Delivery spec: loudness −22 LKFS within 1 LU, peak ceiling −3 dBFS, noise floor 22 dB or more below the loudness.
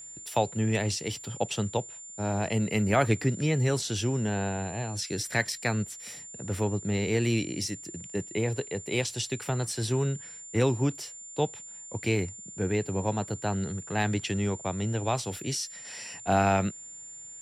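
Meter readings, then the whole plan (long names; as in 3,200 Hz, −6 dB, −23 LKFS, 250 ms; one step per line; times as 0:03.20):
interfering tone 7,200 Hz; level of the tone −42 dBFS; integrated loudness −29.5 LKFS; sample peak −11.0 dBFS; target loudness −22.0 LKFS
→ notch filter 7,200 Hz, Q 30
level +7.5 dB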